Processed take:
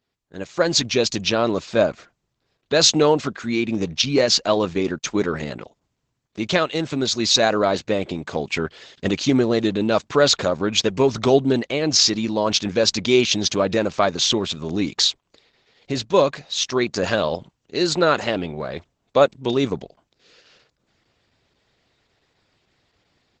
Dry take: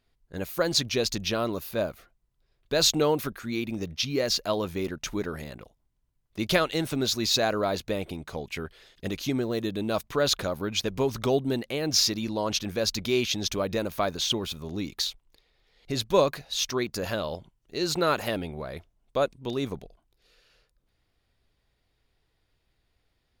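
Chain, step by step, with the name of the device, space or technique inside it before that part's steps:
0:04.18–0:05.40: noise gate −36 dBFS, range −53 dB
video call (high-pass filter 120 Hz 12 dB per octave; automatic gain control gain up to 13 dB; level −1 dB; Opus 12 kbit/s 48,000 Hz)

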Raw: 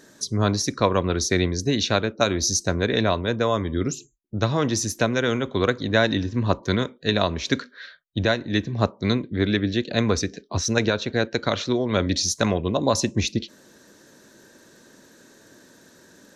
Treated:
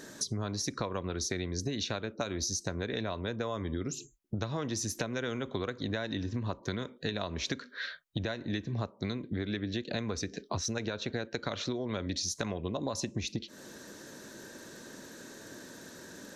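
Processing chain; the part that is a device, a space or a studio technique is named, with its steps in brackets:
serial compression, peaks first (downward compressor 4 to 1, threshold −31 dBFS, peak gain reduction 14.5 dB; downward compressor 2.5 to 1, threshold −36 dBFS, peak gain reduction 7 dB)
level +3.5 dB

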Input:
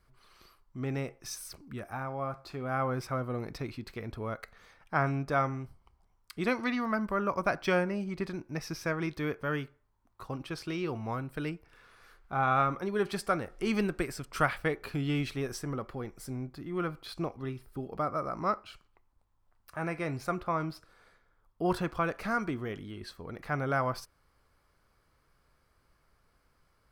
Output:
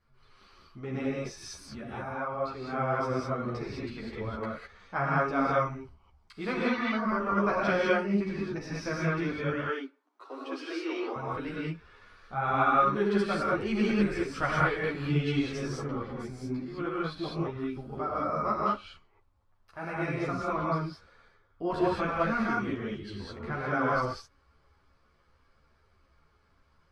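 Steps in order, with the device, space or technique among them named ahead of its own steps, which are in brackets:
0:09.48–0:11.16: Butterworth high-pass 260 Hz 96 dB per octave
reverb whose tail is shaped and stops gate 230 ms rising, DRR −4.5 dB
string-machine ensemble chorus (string-ensemble chorus; low-pass filter 5,100 Hz 12 dB per octave)

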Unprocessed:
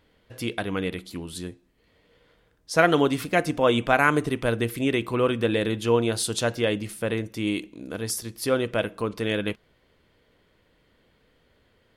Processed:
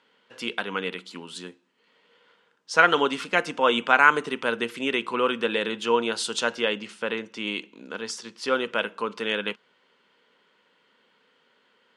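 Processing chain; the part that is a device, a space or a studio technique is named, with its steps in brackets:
0:06.63–0:08.53: low-pass filter 7,400 Hz 12 dB per octave
television speaker (loudspeaker in its box 220–8,100 Hz, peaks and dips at 310 Hz −10 dB, 660 Hz −7 dB, 940 Hz +6 dB, 1,400 Hz +6 dB, 2,900 Hz +6 dB)

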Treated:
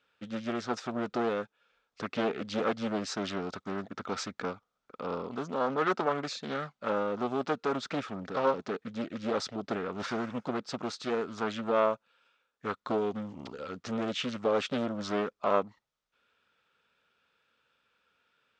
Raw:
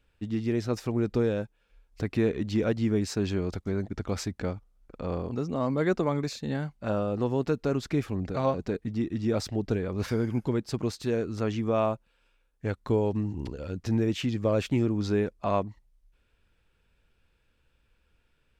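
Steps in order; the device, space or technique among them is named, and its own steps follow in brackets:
full-range speaker at full volume (highs frequency-modulated by the lows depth 0.81 ms; loudspeaker in its box 280–7,100 Hz, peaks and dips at 330 Hz −8 dB, 1,300 Hz +9 dB, 3,500 Hz +4 dB)

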